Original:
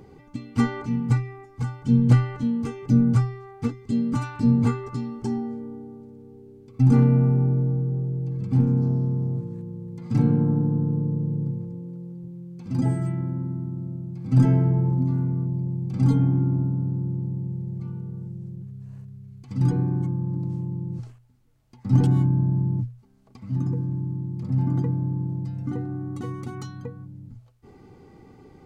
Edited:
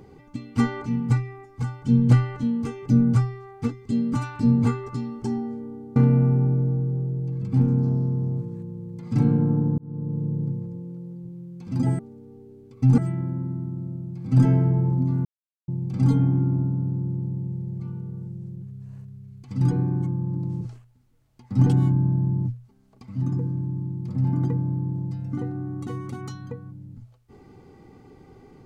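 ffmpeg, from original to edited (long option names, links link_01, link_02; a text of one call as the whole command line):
ffmpeg -i in.wav -filter_complex "[0:a]asplit=8[link_01][link_02][link_03][link_04][link_05][link_06][link_07][link_08];[link_01]atrim=end=5.962[link_09];[link_02]atrim=start=6.948:end=10.77,asetpts=PTS-STARTPTS,afade=type=out:start_time=3.818:duration=0.004:curve=hsin[link_10];[link_03]atrim=start=10.77:end=12.982,asetpts=PTS-STARTPTS,afade=type=in:duration=0.65:curve=qsin[link_11];[link_04]atrim=start=5.958:end=6.952[link_12];[link_05]atrim=start=12.978:end=15.25,asetpts=PTS-STARTPTS,afade=type=out:start_time=2.268:duration=0.004:curve=hsin[link_13];[link_06]atrim=start=15.25:end=15.68,asetpts=PTS-STARTPTS,volume=0[link_14];[link_07]atrim=start=15.68:end=20.612,asetpts=PTS-STARTPTS,afade=type=in:duration=0.004:curve=hsin[link_15];[link_08]atrim=start=20.948[link_16];[link_10][link_11]concat=n=2:v=0:a=1[link_17];[link_09][link_17]acrossfade=duration=0.004:curve1=hsin:curve2=hsin[link_18];[link_18][link_12]acrossfade=duration=0.004:curve1=hsin:curve2=hsin[link_19];[link_13][link_14][link_15]concat=n=3:v=0:a=1[link_20];[link_19][link_20]acrossfade=duration=0.004:curve1=hsin:curve2=hsin[link_21];[link_21][link_16]acrossfade=duration=0.004:curve1=hsin:curve2=hsin" out.wav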